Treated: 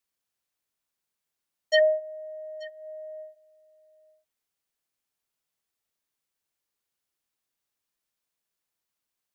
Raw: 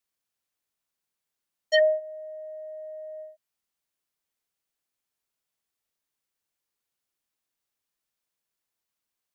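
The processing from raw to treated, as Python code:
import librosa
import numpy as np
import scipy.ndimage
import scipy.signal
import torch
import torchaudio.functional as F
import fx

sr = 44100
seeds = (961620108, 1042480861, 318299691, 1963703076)

y = x + 10.0 ** (-21.0 / 20.0) * np.pad(x, (int(883 * sr / 1000.0), 0))[:len(x)]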